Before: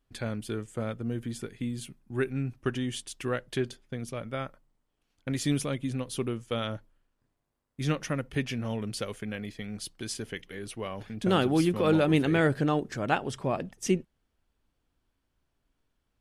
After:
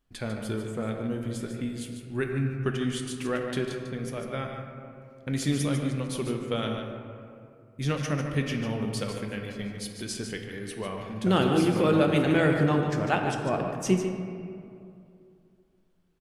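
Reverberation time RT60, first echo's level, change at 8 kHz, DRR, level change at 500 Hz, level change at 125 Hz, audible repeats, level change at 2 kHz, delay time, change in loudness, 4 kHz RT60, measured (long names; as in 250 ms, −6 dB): 2.6 s, −8.0 dB, +1.0 dB, 2.0 dB, +2.5 dB, +3.0 dB, 1, +2.0 dB, 148 ms, +2.0 dB, 1.3 s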